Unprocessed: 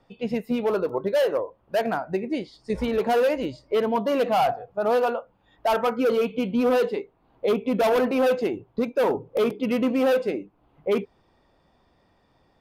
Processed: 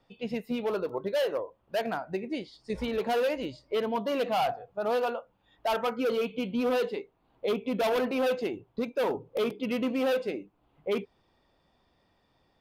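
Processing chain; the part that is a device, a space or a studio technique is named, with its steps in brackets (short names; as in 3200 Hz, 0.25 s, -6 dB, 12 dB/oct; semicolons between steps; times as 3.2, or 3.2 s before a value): presence and air boost (bell 3500 Hz +5 dB 1.4 oct; high shelf 11000 Hz +3 dB); gain -6.5 dB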